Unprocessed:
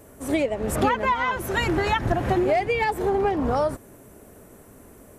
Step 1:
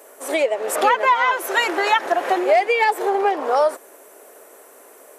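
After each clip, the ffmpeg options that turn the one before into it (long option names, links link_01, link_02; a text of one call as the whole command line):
ffmpeg -i in.wav -af "highpass=frequency=440:width=0.5412,highpass=frequency=440:width=1.3066,volume=6.5dB" out.wav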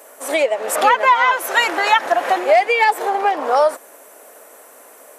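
ffmpeg -i in.wav -af "equalizer=frequency=380:width_type=o:width=0.41:gain=-9.5,volume=3.5dB" out.wav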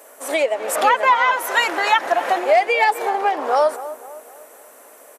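ffmpeg -i in.wav -filter_complex "[0:a]asplit=2[link_01][link_02];[link_02]adelay=256,lowpass=frequency=1600:poles=1,volume=-13.5dB,asplit=2[link_03][link_04];[link_04]adelay=256,lowpass=frequency=1600:poles=1,volume=0.48,asplit=2[link_05][link_06];[link_06]adelay=256,lowpass=frequency=1600:poles=1,volume=0.48,asplit=2[link_07][link_08];[link_08]adelay=256,lowpass=frequency=1600:poles=1,volume=0.48,asplit=2[link_09][link_10];[link_10]adelay=256,lowpass=frequency=1600:poles=1,volume=0.48[link_11];[link_01][link_03][link_05][link_07][link_09][link_11]amix=inputs=6:normalize=0,volume=-2dB" out.wav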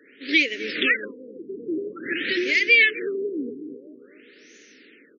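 ffmpeg -i in.wav -af "asuperstop=centerf=840:order=8:qfactor=0.54,afftfilt=real='re*lt(b*sr/1024,460*pow(6900/460,0.5+0.5*sin(2*PI*0.49*pts/sr)))':imag='im*lt(b*sr/1024,460*pow(6900/460,0.5+0.5*sin(2*PI*0.49*pts/sr)))':win_size=1024:overlap=0.75,volume=7dB" out.wav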